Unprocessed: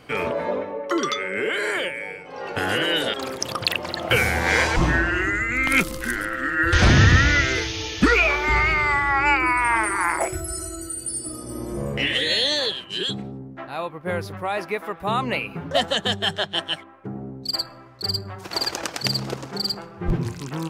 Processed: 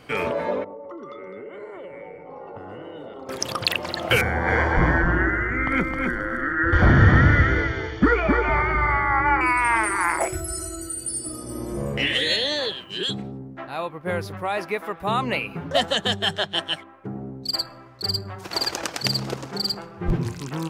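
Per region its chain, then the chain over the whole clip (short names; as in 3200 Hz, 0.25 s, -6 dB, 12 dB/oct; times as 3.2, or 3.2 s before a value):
0.64–3.29 polynomial smoothing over 65 samples + compressor 12:1, threshold -34 dBFS + echo 0.208 s -10.5 dB
4.21–9.41 polynomial smoothing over 41 samples + echo 0.263 s -4 dB
12.36–13.03 high shelf 4400 Hz -9.5 dB + requantised 12-bit, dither triangular
whole clip: dry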